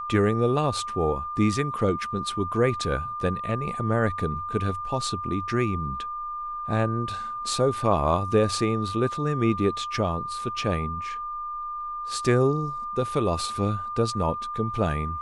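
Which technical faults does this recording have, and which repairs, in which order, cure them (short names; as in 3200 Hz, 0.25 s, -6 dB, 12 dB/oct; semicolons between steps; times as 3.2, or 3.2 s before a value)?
tone 1200 Hz -30 dBFS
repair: notch 1200 Hz, Q 30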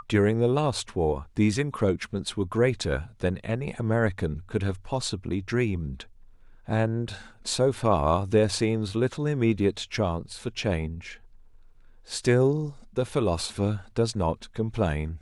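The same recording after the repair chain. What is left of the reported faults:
none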